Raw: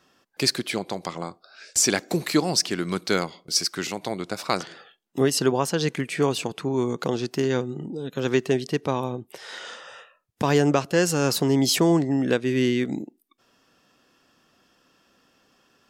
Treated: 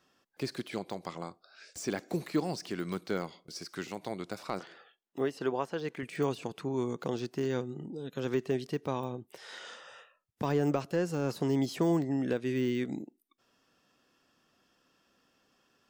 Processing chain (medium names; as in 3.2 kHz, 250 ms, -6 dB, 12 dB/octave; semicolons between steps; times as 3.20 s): de-esser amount 90%; 4.59–6.03 s: tone controls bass -9 dB, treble -8 dB; trim -8 dB